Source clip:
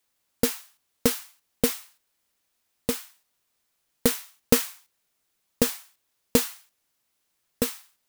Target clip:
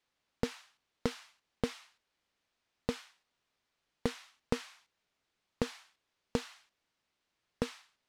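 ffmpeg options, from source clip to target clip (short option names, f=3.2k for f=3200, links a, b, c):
-af "lowpass=4.3k,acompressor=threshold=-27dB:ratio=5,volume=-2dB"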